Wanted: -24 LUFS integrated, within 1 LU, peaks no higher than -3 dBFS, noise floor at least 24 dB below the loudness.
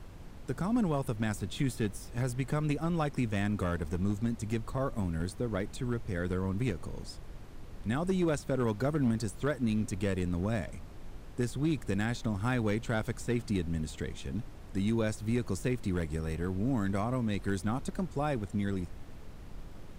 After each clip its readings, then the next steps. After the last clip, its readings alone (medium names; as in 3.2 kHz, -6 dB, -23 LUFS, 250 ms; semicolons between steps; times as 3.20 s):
clipped samples 0.5%; clipping level -22.0 dBFS; noise floor -47 dBFS; noise floor target -57 dBFS; loudness -33.0 LUFS; peak level -22.0 dBFS; loudness target -24.0 LUFS
-> clip repair -22 dBFS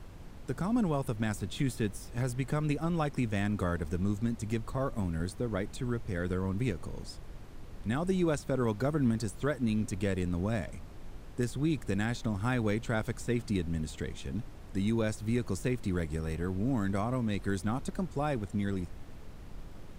clipped samples 0.0%; noise floor -47 dBFS; noise floor target -57 dBFS
-> noise print and reduce 10 dB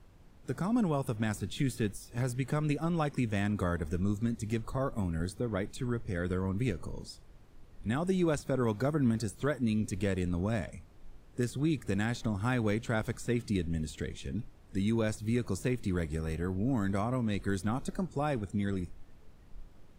noise floor -55 dBFS; noise floor target -57 dBFS
-> noise print and reduce 6 dB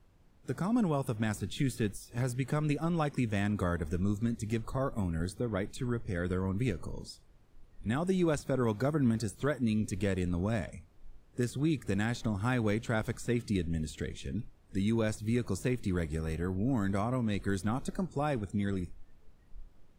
noise floor -61 dBFS; loudness -33.0 LUFS; peak level -17.5 dBFS; loudness target -24.0 LUFS
-> trim +9 dB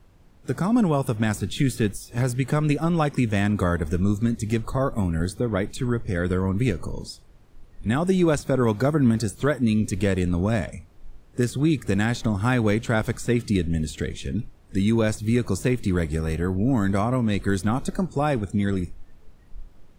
loudness -24.0 LUFS; peak level -8.5 dBFS; noise floor -52 dBFS